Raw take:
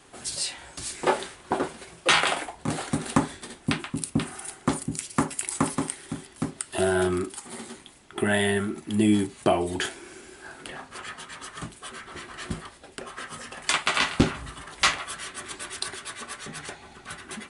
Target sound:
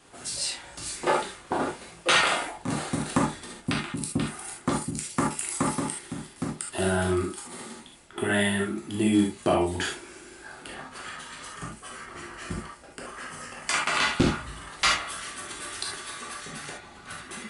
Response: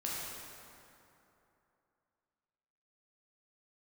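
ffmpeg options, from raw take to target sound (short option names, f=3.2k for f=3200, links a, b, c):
-filter_complex "[0:a]asettb=1/sr,asplit=3[a][b][c];[a]atrim=end=11.484[d];[b]atrim=start=11.48:end=13.92,asetpts=PTS-STARTPTS,afade=t=in:d=0.004:c=qsin,afade=t=out:st=2.436:d=0.004:c=qsin,equalizer=f=3.7k:w=3.7:g=-8.5[e];[c]atrim=start=13.916[f];[d][e]acrossfade=d=0.004:c1=hsin:c2=qsin[g];[g][f]acrossfade=d=0.004:c1=qsin:c2=hsin[h];[1:a]atrim=start_sample=2205,afade=t=out:st=0.13:d=0.01,atrim=end_sample=6174[i];[h][i]afir=irnorm=-1:irlink=0"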